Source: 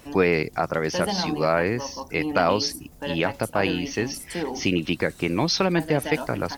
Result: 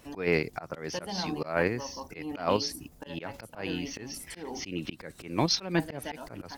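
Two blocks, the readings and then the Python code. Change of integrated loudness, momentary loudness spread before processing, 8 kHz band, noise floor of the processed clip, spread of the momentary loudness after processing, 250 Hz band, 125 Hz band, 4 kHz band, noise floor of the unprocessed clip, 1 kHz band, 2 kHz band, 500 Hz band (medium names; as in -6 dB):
-8.0 dB, 7 LU, -5.5 dB, -55 dBFS, 13 LU, -8.5 dB, -8.0 dB, -6.0 dB, -48 dBFS, -9.0 dB, -8.5 dB, -9.0 dB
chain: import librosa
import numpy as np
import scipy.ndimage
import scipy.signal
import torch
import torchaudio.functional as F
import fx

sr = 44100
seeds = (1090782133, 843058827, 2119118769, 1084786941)

p1 = fx.auto_swell(x, sr, attack_ms=179.0)
p2 = fx.level_steps(p1, sr, step_db=23)
p3 = p1 + (p2 * librosa.db_to_amplitude(-0.5))
y = p3 * librosa.db_to_amplitude(-7.5)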